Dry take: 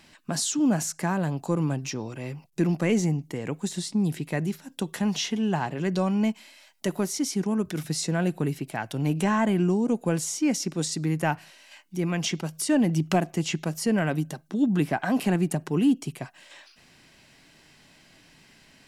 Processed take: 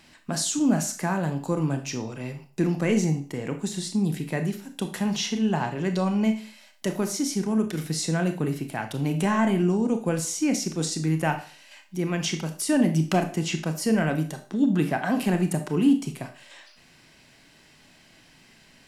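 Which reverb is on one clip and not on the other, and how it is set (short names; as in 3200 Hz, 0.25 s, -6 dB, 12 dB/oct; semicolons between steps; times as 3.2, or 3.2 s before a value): Schroeder reverb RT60 0.39 s, combs from 25 ms, DRR 6.5 dB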